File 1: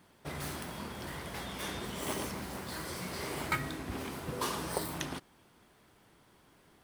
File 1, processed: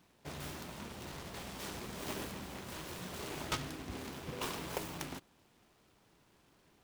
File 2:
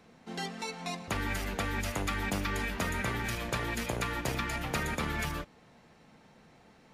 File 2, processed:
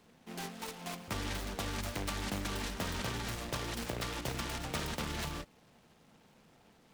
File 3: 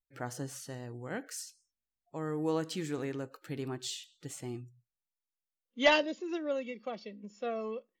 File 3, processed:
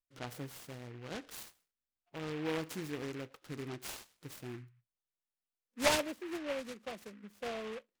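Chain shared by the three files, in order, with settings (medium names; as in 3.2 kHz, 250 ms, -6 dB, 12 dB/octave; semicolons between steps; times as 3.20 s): delay time shaken by noise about 1.7 kHz, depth 0.12 ms; trim -4.5 dB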